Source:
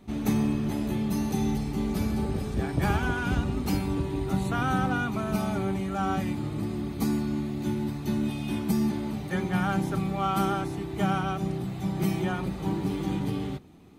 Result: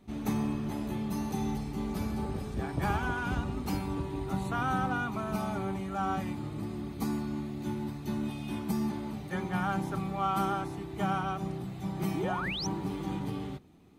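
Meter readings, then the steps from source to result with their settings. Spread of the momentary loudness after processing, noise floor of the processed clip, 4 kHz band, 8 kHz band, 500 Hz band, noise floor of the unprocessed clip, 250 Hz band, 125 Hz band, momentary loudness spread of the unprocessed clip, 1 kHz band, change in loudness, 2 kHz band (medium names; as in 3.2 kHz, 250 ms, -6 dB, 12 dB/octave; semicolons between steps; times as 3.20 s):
6 LU, -41 dBFS, -3.0 dB, -4.5 dB, -5.0 dB, -36 dBFS, -6.0 dB, -6.0 dB, 5 LU, -2.0 dB, -5.0 dB, -3.5 dB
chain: dynamic bell 1 kHz, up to +6 dB, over -44 dBFS, Q 1.4; painted sound rise, 12.14–12.67 s, 250–6400 Hz -30 dBFS; trim -6 dB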